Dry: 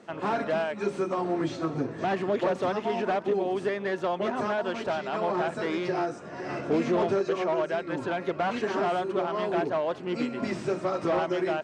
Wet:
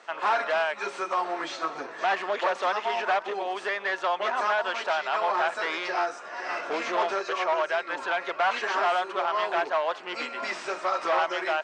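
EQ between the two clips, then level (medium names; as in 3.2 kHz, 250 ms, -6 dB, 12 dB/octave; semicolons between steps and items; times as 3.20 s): Chebyshev high-pass 1 kHz, order 2; low-pass 7.3 kHz 12 dB/octave; +7.5 dB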